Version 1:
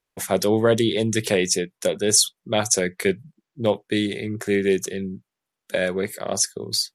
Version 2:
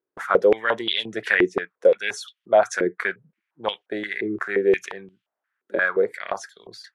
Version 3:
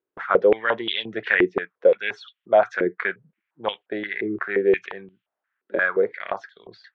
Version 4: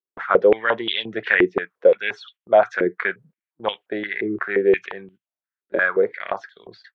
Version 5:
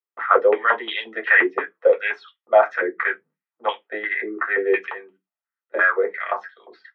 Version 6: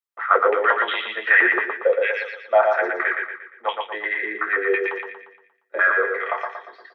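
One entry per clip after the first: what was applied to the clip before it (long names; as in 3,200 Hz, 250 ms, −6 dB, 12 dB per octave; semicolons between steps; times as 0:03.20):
parametric band 1,500 Hz +9 dB 1 octave; band-pass on a step sequencer 5.7 Hz 360–3,100 Hz; level +8.5 dB
low-pass filter 3,500 Hz 24 dB per octave
noise gate −51 dBFS, range −19 dB; level +2 dB
high-pass filter 700 Hz 12 dB per octave; convolution reverb RT60 0.15 s, pre-delay 3 ms, DRR 0.5 dB; level −8 dB
parametric band 180 Hz −9.5 dB 2.3 octaves; on a send: repeating echo 117 ms, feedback 44%, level −4 dB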